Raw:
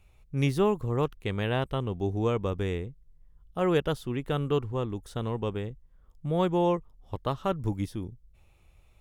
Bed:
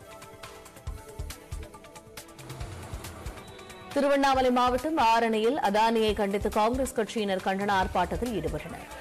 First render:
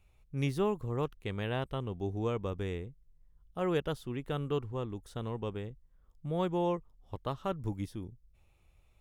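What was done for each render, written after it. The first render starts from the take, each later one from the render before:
level −6 dB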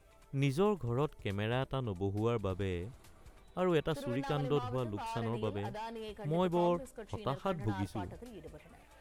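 mix in bed −19 dB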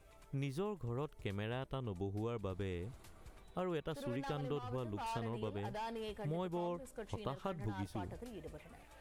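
downward compressor 5 to 1, threshold −37 dBFS, peak gain reduction 11 dB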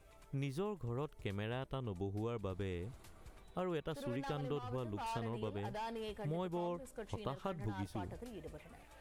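no processing that can be heard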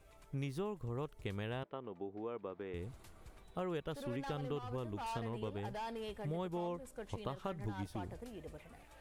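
0:01.63–0:02.74: band-pass filter 280–2,100 Hz

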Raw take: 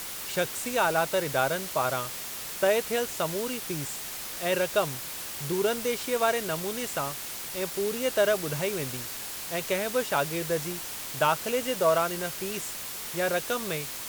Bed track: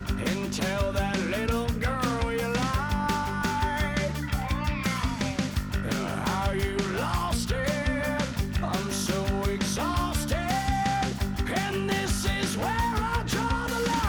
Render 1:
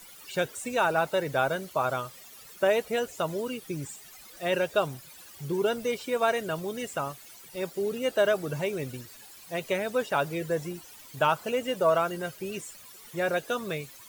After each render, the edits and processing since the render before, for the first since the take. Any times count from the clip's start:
broadband denoise 16 dB, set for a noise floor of −37 dBFS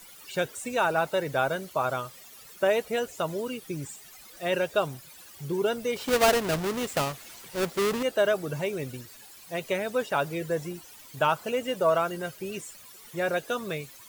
0:05.96–0:08.03: each half-wave held at its own peak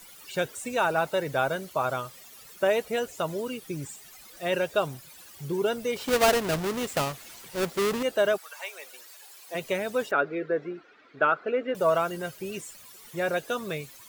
0:08.36–0:09.54: high-pass filter 1,100 Hz → 310 Hz 24 dB per octave
0:10.11–0:11.75: loudspeaker in its box 270–3,100 Hz, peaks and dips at 280 Hz +5 dB, 410 Hz +7 dB, 920 Hz −9 dB, 1,400 Hz +8 dB, 3,000 Hz −9 dB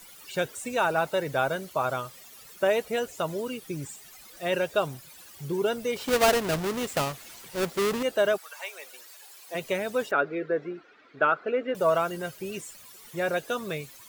no processing that can be heard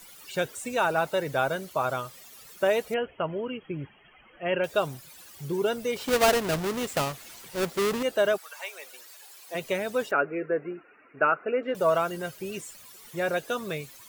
0:02.94–0:04.64: linear-phase brick-wall low-pass 3,300 Hz
0:10.13–0:11.63: linear-phase brick-wall low-pass 2,900 Hz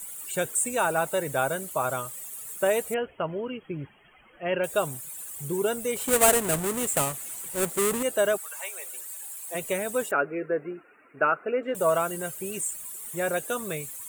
high shelf with overshoot 6,600 Hz +9 dB, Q 3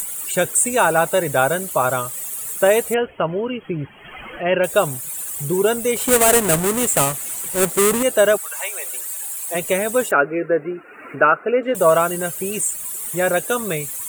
upward compression, threshold −32 dBFS
boost into a limiter +9 dB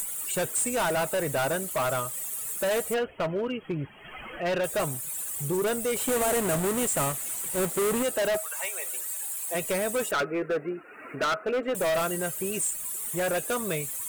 tuned comb filter 640 Hz, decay 0.2 s, harmonics all, mix 50%
hard clipping −23.5 dBFS, distortion −6 dB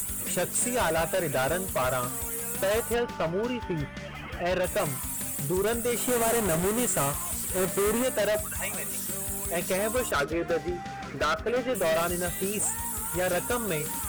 mix in bed track −12 dB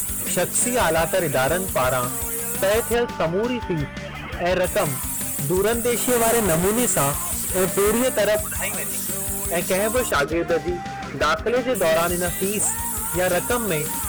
level +6.5 dB

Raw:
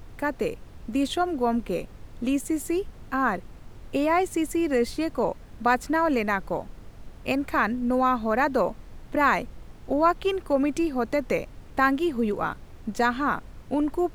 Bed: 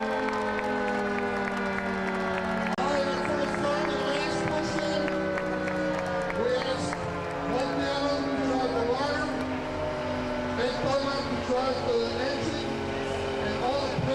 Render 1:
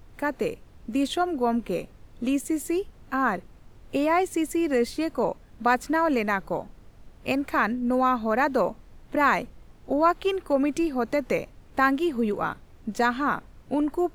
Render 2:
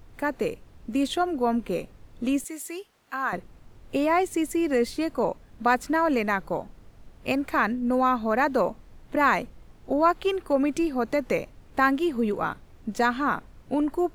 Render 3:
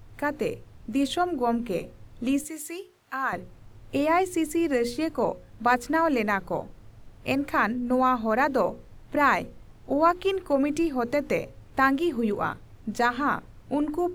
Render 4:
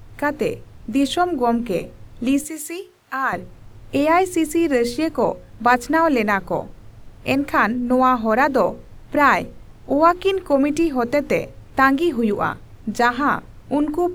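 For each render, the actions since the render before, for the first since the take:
noise reduction from a noise print 6 dB
0:02.44–0:03.33: high-pass filter 1,200 Hz 6 dB per octave
parametric band 110 Hz +10 dB 0.37 octaves; mains-hum notches 60/120/180/240/300/360/420/480/540 Hz
level +6.5 dB

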